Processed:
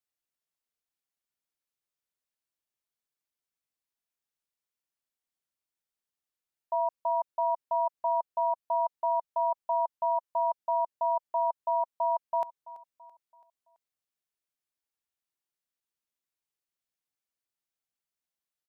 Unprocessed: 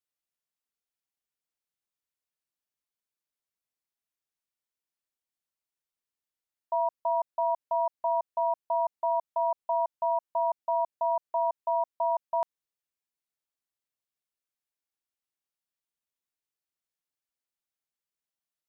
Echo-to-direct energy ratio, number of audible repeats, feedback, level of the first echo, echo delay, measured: -18.0 dB, 3, 47%, -19.0 dB, 333 ms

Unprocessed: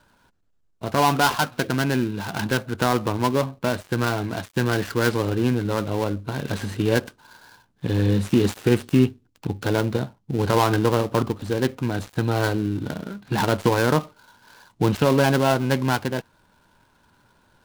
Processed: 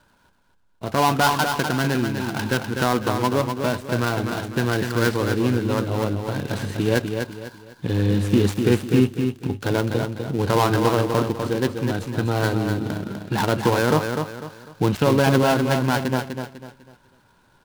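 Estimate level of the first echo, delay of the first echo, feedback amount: -6.0 dB, 249 ms, 34%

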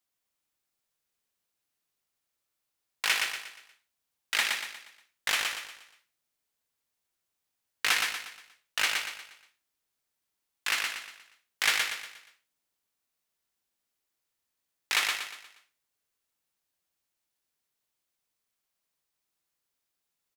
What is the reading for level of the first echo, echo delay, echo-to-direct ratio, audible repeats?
-4.0 dB, 119 ms, -3.0 dB, 5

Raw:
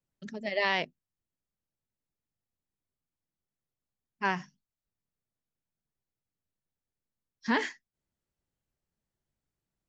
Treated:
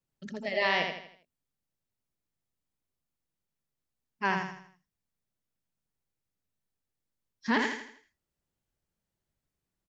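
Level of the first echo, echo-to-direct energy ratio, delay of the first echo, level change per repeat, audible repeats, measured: -5.0 dB, -4.0 dB, 81 ms, -7.5 dB, 4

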